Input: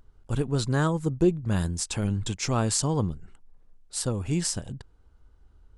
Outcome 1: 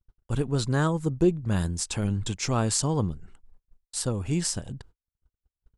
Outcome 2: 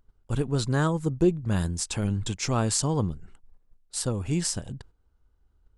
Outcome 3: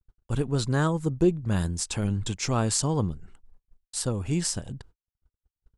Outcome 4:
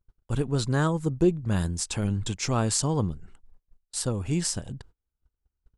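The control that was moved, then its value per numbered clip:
gate, range: -42, -9, -58, -28 dB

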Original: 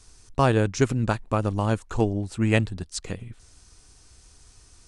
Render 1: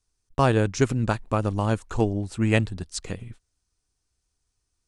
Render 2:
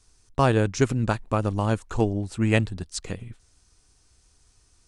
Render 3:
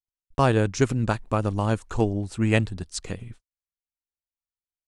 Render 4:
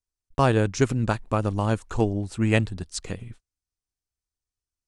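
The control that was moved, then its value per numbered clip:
gate, range: -24, -8, -55, -39 dB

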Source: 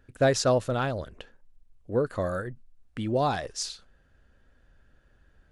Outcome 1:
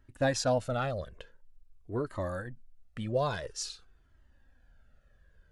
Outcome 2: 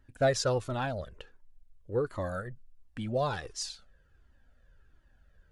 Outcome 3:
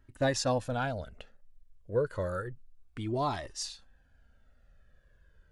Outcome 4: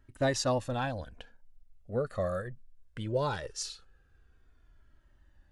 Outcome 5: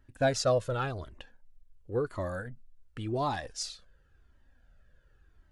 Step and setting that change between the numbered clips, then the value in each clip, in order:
cascading flanger, rate: 0.48, 1.4, 0.3, 0.2, 0.92 Hz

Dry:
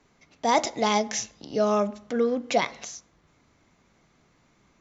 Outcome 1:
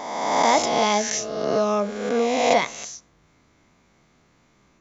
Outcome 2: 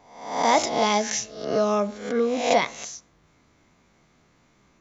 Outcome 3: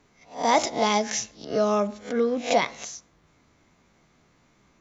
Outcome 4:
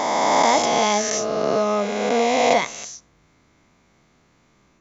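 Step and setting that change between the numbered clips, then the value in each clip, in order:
spectral swells, rising 60 dB in: 1.5, 0.68, 0.32, 3.2 s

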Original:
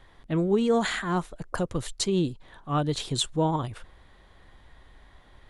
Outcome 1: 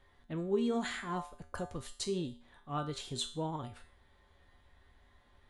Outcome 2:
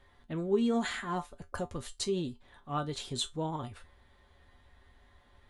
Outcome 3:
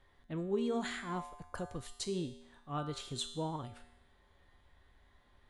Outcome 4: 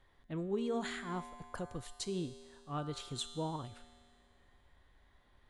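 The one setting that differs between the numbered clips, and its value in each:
resonator, decay: 0.43, 0.16, 0.91, 2.1 s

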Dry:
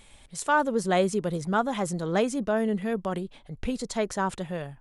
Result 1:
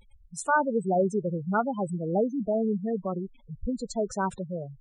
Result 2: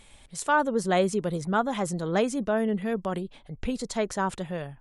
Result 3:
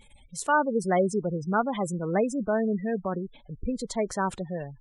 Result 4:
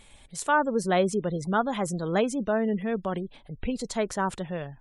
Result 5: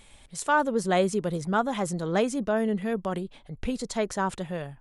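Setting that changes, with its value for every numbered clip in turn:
spectral gate, under each frame's peak: -10, -50, -20, -35, -60 dB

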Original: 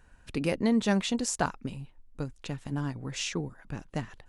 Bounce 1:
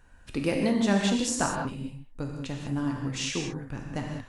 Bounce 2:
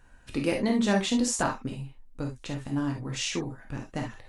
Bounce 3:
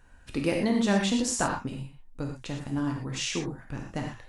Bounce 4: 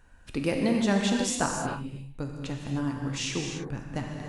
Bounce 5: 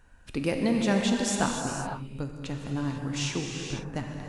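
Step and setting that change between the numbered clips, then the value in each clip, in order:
non-linear reverb, gate: 220, 90, 140, 330, 530 ms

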